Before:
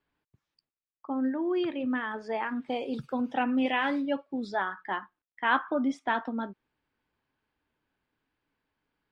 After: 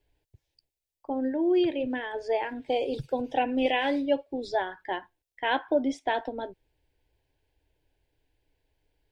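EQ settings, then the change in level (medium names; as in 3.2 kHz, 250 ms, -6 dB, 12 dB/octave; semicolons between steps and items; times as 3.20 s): bass shelf 83 Hz +10 dB; bass shelf 200 Hz +4.5 dB; static phaser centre 510 Hz, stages 4; +6.0 dB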